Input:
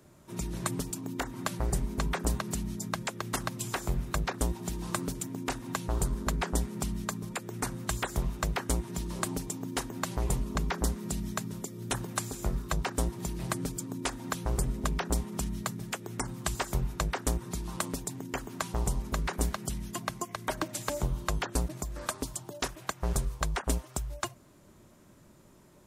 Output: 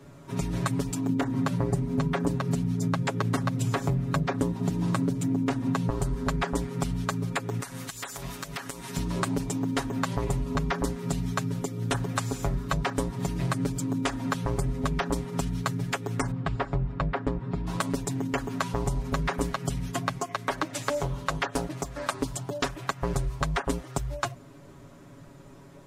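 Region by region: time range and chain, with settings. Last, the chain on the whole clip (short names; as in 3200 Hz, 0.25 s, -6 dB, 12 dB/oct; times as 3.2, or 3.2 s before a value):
1.09–5.9 HPF 120 Hz + low shelf 440 Hz +11 dB
7.6–8.97 tilt +3.5 dB/oct + compressor 20:1, threshold -37 dBFS
16.31–17.67 tape spacing loss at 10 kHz 31 dB + notch 6100 Hz, Q 6.8
20.18–22.12 low shelf 200 Hz -9 dB + Doppler distortion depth 0.33 ms
whole clip: LPF 3200 Hz 6 dB/oct; comb 7.2 ms, depth 97%; compressor, threshold -30 dBFS; gain +6.5 dB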